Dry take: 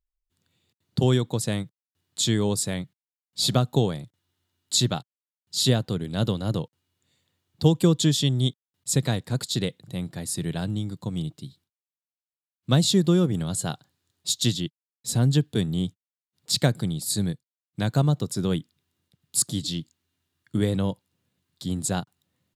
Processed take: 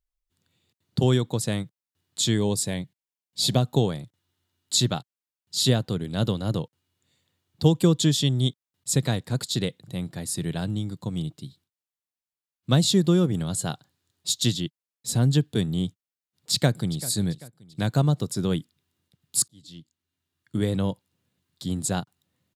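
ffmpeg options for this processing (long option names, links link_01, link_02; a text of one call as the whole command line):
ffmpeg -i in.wav -filter_complex "[0:a]asettb=1/sr,asplit=3[link_01][link_02][link_03];[link_01]atrim=end=2.384[link_04];[link_02]atrim=start=2.38:end=3.62,asetpts=PTS-STARTPTS,afade=type=in:duration=0.004:curve=qsin,afade=type=out:start_time=1.236:duration=0.004:curve=qsin,equalizer=frequency=1300:width_type=o:width=0.22:gain=-14[link_05];[link_03]atrim=start=3.616[link_06];[link_04][link_05]acrossfade=duration=0.004:curve1=hsin:curve2=qsin[link_07];[link_07][link_06]acrossfade=duration=0.004:curve1=qsin:curve2=hsin,asplit=2[link_08][link_09];[link_09]afade=type=in:start_time=16.52:duration=0.01,afade=type=out:start_time=17.08:duration=0.01,aecho=0:1:390|780|1170|1560:0.133352|0.0600085|0.0270038|0.0121517[link_10];[link_08][link_10]amix=inputs=2:normalize=0,asplit=2[link_11][link_12];[link_11]atrim=end=19.48,asetpts=PTS-STARTPTS,afade=type=out:start_time=19.476:duration=0.004:curve=hsin[link_13];[link_12]atrim=start=19.48,asetpts=PTS-STARTPTS,afade=type=in:duration=1.35[link_14];[link_13][link_14]concat=n=2:v=0:a=1" out.wav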